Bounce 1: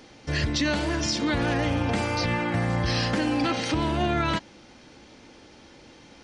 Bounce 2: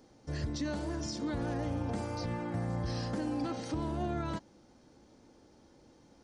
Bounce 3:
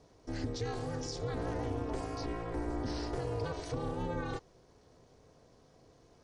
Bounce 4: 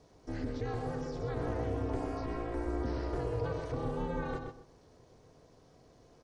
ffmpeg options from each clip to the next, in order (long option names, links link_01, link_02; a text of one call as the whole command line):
ffmpeg -i in.wav -af "equalizer=frequency=2600:width_type=o:width=1.7:gain=-13.5,volume=-8.5dB" out.wav
ffmpeg -i in.wav -af "aeval=exprs='val(0)*sin(2*PI*180*n/s)':channel_layout=same,volume=1.5dB" out.wav
ffmpeg -i in.wav -filter_complex "[0:a]asplit=2[link_01][link_02];[link_02]adelay=127,lowpass=frequency=1500:poles=1,volume=-4dB,asplit=2[link_03][link_04];[link_04]adelay=127,lowpass=frequency=1500:poles=1,volume=0.27,asplit=2[link_05][link_06];[link_06]adelay=127,lowpass=frequency=1500:poles=1,volume=0.27,asplit=2[link_07][link_08];[link_08]adelay=127,lowpass=frequency=1500:poles=1,volume=0.27[link_09];[link_01][link_03][link_05][link_07][link_09]amix=inputs=5:normalize=0,acrossover=split=2600[link_10][link_11];[link_11]acompressor=threshold=-59dB:ratio=4:attack=1:release=60[link_12];[link_10][link_12]amix=inputs=2:normalize=0" out.wav